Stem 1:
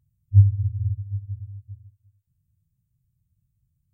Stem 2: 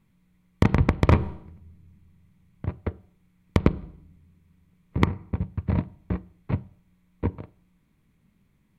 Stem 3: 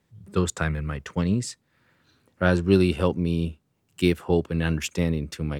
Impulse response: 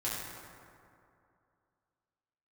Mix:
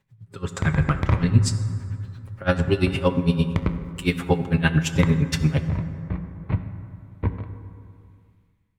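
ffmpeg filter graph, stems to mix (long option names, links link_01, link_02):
-filter_complex "[0:a]adelay=1000,volume=-19dB,asplit=2[link_01][link_02];[link_02]volume=-10.5dB[link_03];[1:a]volume=-11dB,asplit=2[link_04][link_05];[link_05]volume=-10.5dB[link_06];[2:a]aecho=1:1:7.4:0.89,alimiter=limit=-15.5dB:level=0:latency=1:release=41,aeval=exprs='val(0)*pow(10,-24*(0.5-0.5*cos(2*PI*8.8*n/s))/20)':channel_layout=same,volume=3dB,asplit=2[link_07][link_08];[link_08]volume=-12dB[link_09];[3:a]atrim=start_sample=2205[link_10];[link_03][link_06][link_09]amix=inputs=3:normalize=0[link_11];[link_11][link_10]afir=irnorm=-1:irlink=0[link_12];[link_01][link_04][link_07][link_12]amix=inputs=4:normalize=0,highshelf=frequency=3800:gain=-8.5,dynaudnorm=framelen=190:gausssize=7:maxgain=15dB,equalizer=frequency=360:width_type=o:width=2.5:gain=-8"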